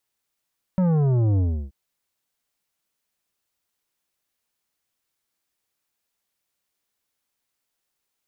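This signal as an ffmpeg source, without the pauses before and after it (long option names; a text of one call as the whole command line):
ffmpeg -f lavfi -i "aevalsrc='0.126*clip((0.93-t)/0.33,0,1)*tanh(3.35*sin(2*PI*190*0.93/log(65/190)*(exp(log(65/190)*t/0.93)-1)))/tanh(3.35)':duration=0.93:sample_rate=44100" out.wav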